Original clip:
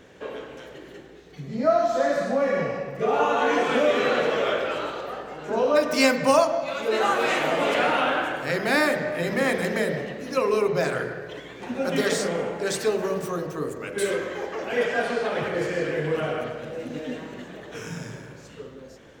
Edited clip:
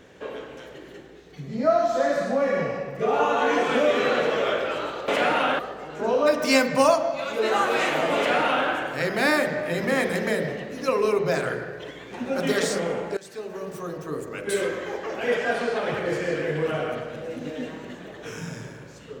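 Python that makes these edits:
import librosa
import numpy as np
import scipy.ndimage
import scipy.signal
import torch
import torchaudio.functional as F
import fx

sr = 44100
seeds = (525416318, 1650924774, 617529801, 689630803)

y = fx.edit(x, sr, fx.duplicate(start_s=7.66, length_s=0.51, to_s=5.08),
    fx.fade_in_from(start_s=12.66, length_s=1.21, floor_db=-21.0), tone=tone)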